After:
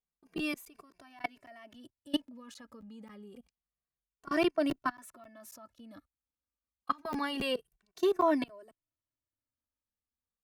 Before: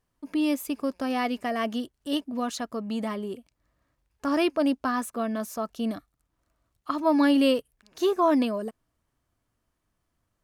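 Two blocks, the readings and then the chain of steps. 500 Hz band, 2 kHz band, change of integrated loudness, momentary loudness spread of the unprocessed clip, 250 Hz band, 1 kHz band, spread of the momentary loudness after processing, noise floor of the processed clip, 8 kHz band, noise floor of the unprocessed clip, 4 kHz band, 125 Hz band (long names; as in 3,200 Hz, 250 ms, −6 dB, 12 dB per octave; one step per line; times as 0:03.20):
−7.0 dB, −5.0 dB, −6.5 dB, 12 LU, −11.0 dB, −7.0 dB, 23 LU, below −85 dBFS, −11.5 dB, −78 dBFS, −6.0 dB, can't be measured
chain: noise gate −58 dBFS, range −11 dB
dynamic equaliser 1,800 Hz, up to +5 dB, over −43 dBFS, Q 1.3
output level in coarse steps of 24 dB
regular buffer underruns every 0.27 s, samples 512, zero, from 0:00.38
barber-pole flanger 2.1 ms −0.28 Hz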